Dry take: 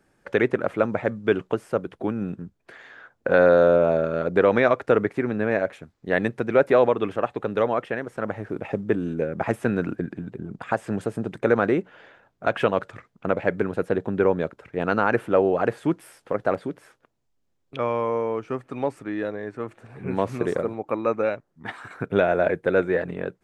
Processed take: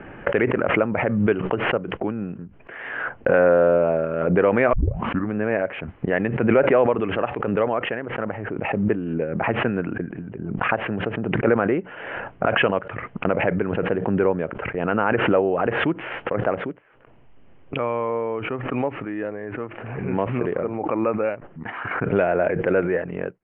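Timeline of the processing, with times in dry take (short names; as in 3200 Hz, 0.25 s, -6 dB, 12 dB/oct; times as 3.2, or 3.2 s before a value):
4.73 tape start 0.62 s
whole clip: gate -39 dBFS, range -14 dB; Chebyshev low-pass 3000 Hz, order 6; backwards sustainer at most 37 dB/s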